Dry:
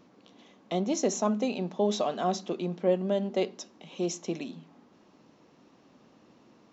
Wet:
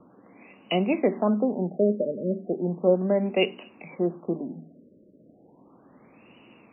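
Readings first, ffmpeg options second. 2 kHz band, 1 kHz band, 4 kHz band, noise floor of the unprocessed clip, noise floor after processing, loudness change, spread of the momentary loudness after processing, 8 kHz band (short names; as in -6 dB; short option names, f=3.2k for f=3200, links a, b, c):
+8.0 dB, -1.0 dB, +3.0 dB, -61 dBFS, -56 dBFS, +4.5 dB, 10 LU, n/a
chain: -filter_complex "[0:a]bandreject=f=77.49:t=h:w=4,bandreject=f=154.98:t=h:w=4,bandreject=f=232.47:t=h:w=4,bandreject=f=309.96:t=h:w=4,bandreject=f=387.45:t=h:w=4,acrossover=split=290|850|2300[a][b][c][d];[c]alimiter=level_in=11dB:limit=-24dB:level=0:latency=1:release=96,volume=-11dB[e];[a][b][e][d]amix=inputs=4:normalize=0,aexciter=amount=7.1:drive=5.1:freq=2.5k,afftfilt=real='re*lt(b*sr/1024,610*pow(3000/610,0.5+0.5*sin(2*PI*0.35*pts/sr)))':imag='im*lt(b*sr/1024,610*pow(3000/610,0.5+0.5*sin(2*PI*0.35*pts/sr)))':win_size=1024:overlap=0.75,volume=5dB"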